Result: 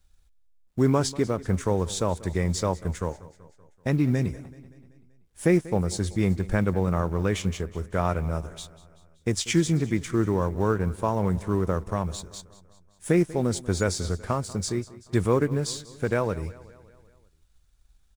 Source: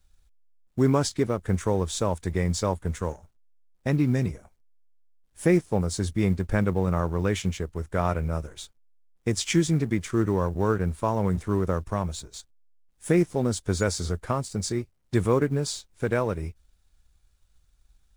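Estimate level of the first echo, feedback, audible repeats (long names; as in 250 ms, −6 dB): −19.0 dB, 56%, 4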